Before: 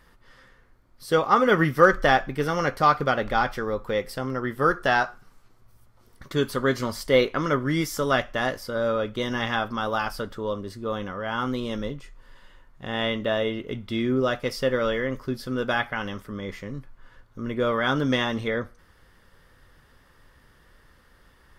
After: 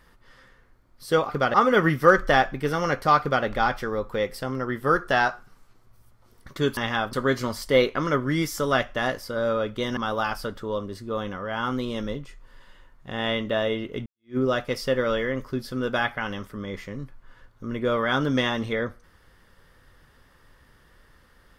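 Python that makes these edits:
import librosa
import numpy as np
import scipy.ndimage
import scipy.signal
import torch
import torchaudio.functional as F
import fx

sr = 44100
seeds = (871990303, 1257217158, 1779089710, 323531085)

y = fx.edit(x, sr, fx.duplicate(start_s=2.95, length_s=0.25, to_s=1.29),
    fx.move(start_s=9.36, length_s=0.36, to_s=6.52),
    fx.fade_in_span(start_s=13.81, length_s=0.31, curve='exp'), tone=tone)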